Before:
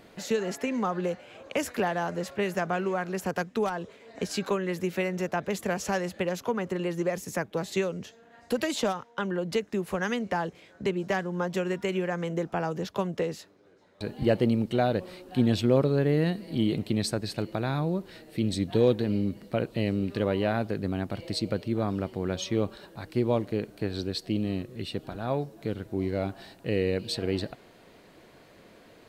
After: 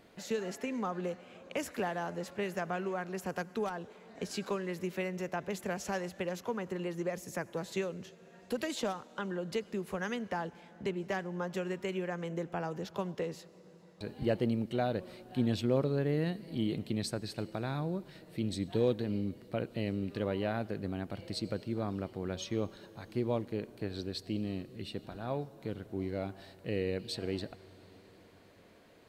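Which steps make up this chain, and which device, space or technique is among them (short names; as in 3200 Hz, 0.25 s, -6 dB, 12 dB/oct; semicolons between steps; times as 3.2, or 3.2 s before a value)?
compressed reverb return (on a send at -13 dB: reverb RT60 2.8 s, pre-delay 73 ms + compressor, threshold -33 dBFS, peak gain reduction 14.5 dB); on the sum: gain -7 dB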